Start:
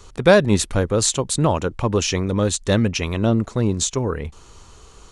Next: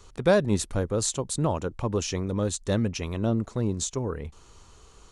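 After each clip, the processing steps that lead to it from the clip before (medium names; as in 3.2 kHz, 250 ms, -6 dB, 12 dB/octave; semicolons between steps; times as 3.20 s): dynamic bell 2.5 kHz, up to -5 dB, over -38 dBFS, Q 0.73; trim -7 dB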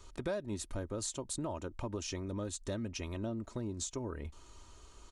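comb 3.2 ms, depth 48%; compression 4:1, threshold -31 dBFS, peak gain reduction 14 dB; trim -5 dB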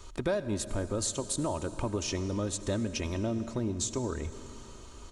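reverberation RT60 3.6 s, pre-delay 68 ms, DRR 12 dB; trim +6.5 dB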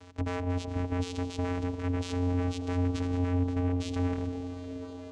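wavefolder -31 dBFS; vocoder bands 4, square 89.4 Hz; repeats whose band climbs or falls 713 ms, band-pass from 390 Hz, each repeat 0.7 oct, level -6 dB; trim +7.5 dB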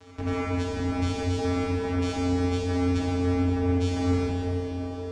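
plate-style reverb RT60 2.4 s, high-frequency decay 0.9×, DRR -6 dB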